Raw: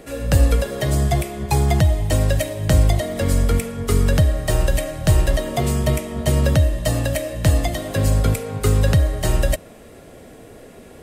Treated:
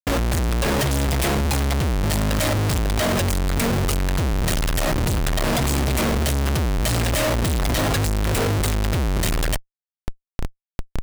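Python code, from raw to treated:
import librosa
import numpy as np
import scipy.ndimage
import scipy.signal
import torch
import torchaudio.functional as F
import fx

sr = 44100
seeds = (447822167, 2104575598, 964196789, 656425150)

y = fx.rider(x, sr, range_db=10, speed_s=0.5)
y = fx.peak_eq(y, sr, hz=510.0, db=-9.5, octaves=2.9)
y = fx.schmitt(y, sr, flips_db=-35.5)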